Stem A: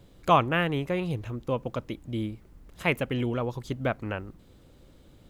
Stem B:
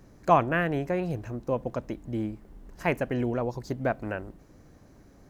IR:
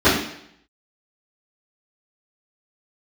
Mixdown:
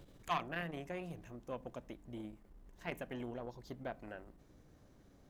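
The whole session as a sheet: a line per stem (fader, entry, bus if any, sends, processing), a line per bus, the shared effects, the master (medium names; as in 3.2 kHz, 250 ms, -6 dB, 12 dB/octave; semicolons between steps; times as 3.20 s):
-1.5 dB, 0.00 s, no send, de-hum 85.98 Hz, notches 3; auto duck -14 dB, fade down 0.50 s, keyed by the second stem
-9.5 dB, 0.00 s, polarity flipped, no send, none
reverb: none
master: transformer saturation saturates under 1.1 kHz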